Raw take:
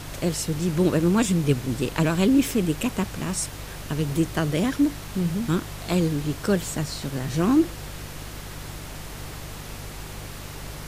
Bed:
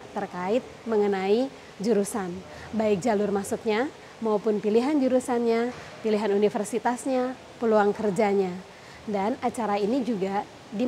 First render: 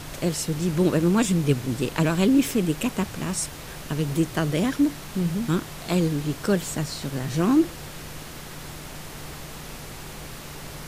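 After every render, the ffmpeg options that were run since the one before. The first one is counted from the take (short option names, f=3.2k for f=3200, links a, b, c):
-af "bandreject=f=50:t=h:w=4,bandreject=f=100:t=h:w=4"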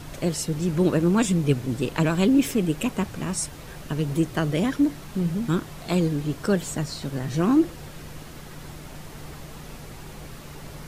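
-af "afftdn=nr=6:nf=-39"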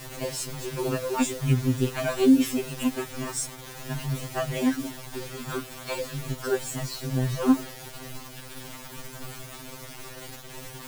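-af "acrusher=bits=5:mix=0:aa=0.000001,afftfilt=real='re*2.45*eq(mod(b,6),0)':imag='im*2.45*eq(mod(b,6),0)':win_size=2048:overlap=0.75"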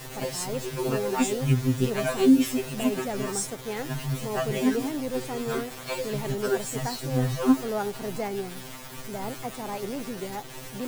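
-filter_complex "[1:a]volume=-8.5dB[a];[0:a][a]amix=inputs=2:normalize=0"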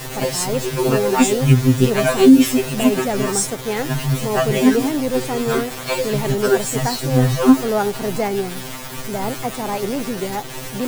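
-af "volume=10dB,alimiter=limit=-1dB:level=0:latency=1"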